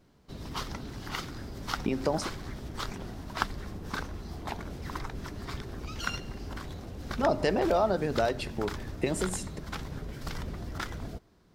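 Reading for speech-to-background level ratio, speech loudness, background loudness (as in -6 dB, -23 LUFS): 8.0 dB, -30.5 LUFS, -38.5 LUFS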